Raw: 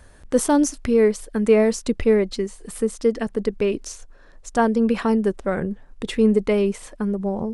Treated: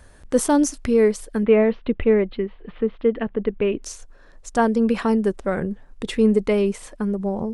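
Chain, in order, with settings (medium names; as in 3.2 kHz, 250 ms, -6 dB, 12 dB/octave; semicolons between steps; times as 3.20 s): 1.43–3.83 s: steep low-pass 3.4 kHz 48 dB/octave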